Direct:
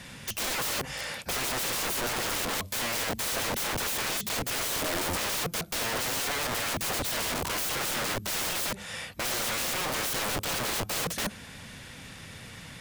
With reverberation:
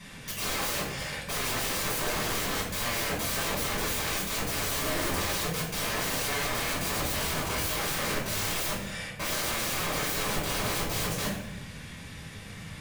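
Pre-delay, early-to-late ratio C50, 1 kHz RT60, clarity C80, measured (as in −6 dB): 5 ms, 4.0 dB, 0.70 s, 7.0 dB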